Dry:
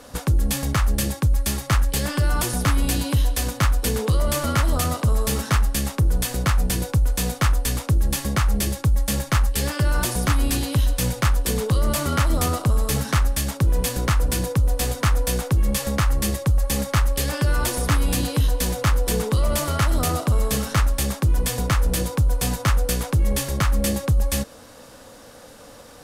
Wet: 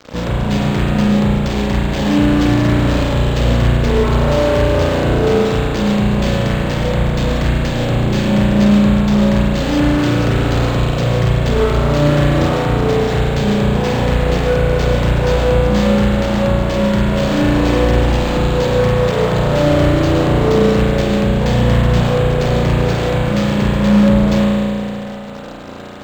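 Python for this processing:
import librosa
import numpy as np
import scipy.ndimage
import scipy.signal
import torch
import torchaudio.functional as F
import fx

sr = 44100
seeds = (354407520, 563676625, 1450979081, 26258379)

y = fx.graphic_eq(x, sr, hz=(125, 250, 500, 1000, 2000, 4000, 8000), db=(11, 9, 10, -9, 4, 9, -6))
y = fx.fuzz(y, sr, gain_db=31.0, gate_db=-32.0)
y = fx.rev_spring(y, sr, rt60_s=2.5, pass_ms=(34,), chirp_ms=20, drr_db=-6.5)
y = np.interp(np.arange(len(y)), np.arange(len(y))[::4], y[::4])
y = y * librosa.db_to_amplitude(-6.5)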